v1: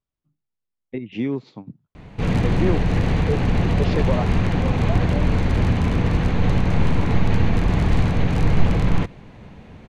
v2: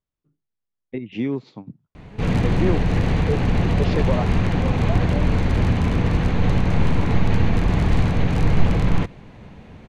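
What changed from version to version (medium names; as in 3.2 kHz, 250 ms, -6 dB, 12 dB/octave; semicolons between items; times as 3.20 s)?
first voice: remove static phaser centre 1.6 kHz, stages 6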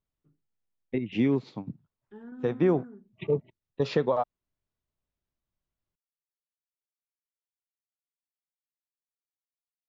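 background: muted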